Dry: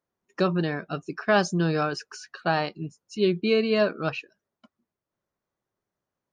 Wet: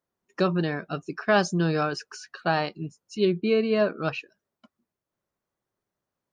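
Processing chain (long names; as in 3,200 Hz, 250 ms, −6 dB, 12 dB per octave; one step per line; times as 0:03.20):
0:03.25–0:03.98: high-shelf EQ 3,100 Hz −9.5 dB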